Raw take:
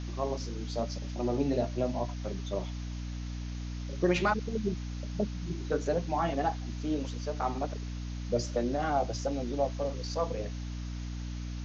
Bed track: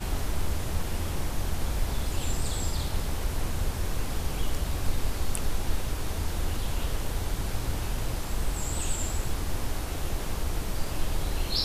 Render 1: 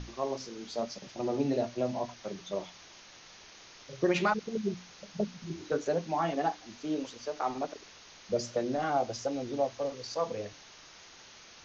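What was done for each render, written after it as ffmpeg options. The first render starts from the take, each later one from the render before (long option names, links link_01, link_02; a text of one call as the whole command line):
ffmpeg -i in.wav -af "bandreject=frequency=60:width_type=h:width=6,bandreject=frequency=120:width_type=h:width=6,bandreject=frequency=180:width_type=h:width=6,bandreject=frequency=240:width_type=h:width=6,bandreject=frequency=300:width_type=h:width=6" out.wav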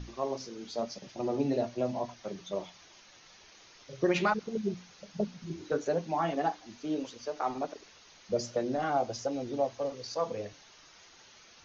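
ffmpeg -i in.wav -af "afftdn=noise_reduction=6:noise_floor=-53" out.wav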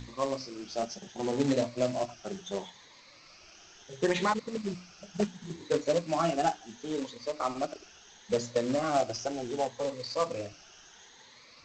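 ffmpeg -i in.wav -af "afftfilt=real='re*pow(10,10/40*sin(2*PI*(1*log(max(b,1)*sr/1024/100)/log(2)-(0.71)*(pts-256)/sr)))':imag='im*pow(10,10/40*sin(2*PI*(1*log(max(b,1)*sr/1024/100)/log(2)-(0.71)*(pts-256)/sr)))':win_size=1024:overlap=0.75,aresample=16000,acrusher=bits=3:mode=log:mix=0:aa=0.000001,aresample=44100" out.wav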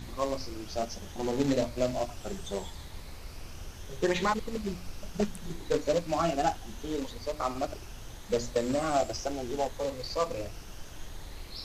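ffmpeg -i in.wav -i bed.wav -filter_complex "[1:a]volume=-14.5dB[link_01];[0:a][link_01]amix=inputs=2:normalize=0" out.wav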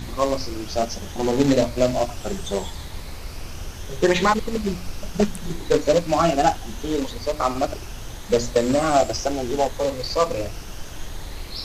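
ffmpeg -i in.wav -af "volume=9.5dB" out.wav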